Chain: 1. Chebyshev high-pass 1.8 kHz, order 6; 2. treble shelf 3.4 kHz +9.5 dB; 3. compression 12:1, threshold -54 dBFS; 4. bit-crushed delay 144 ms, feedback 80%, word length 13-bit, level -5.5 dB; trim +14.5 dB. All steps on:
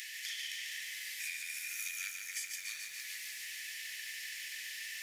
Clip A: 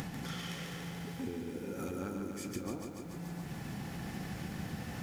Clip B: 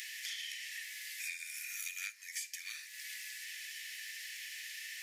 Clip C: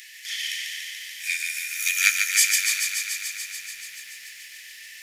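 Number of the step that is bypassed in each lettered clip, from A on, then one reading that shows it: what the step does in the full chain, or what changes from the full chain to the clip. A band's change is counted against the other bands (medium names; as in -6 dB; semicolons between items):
1, 1 kHz band +27.5 dB; 4, crest factor change +2.0 dB; 3, mean gain reduction 6.5 dB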